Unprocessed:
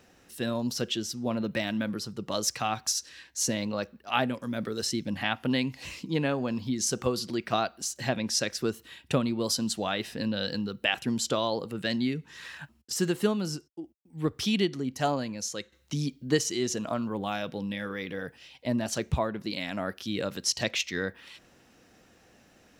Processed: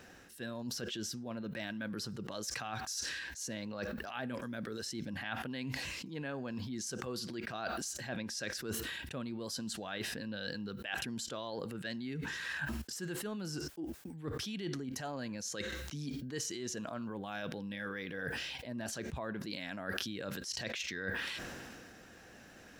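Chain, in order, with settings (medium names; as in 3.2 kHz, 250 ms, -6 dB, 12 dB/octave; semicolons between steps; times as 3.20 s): reverse; compression 12:1, threshold -41 dBFS, peak gain reduction 23 dB; reverse; peaking EQ 1.6 kHz +8 dB 0.26 oct; decay stretcher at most 23 dB/s; trim +2.5 dB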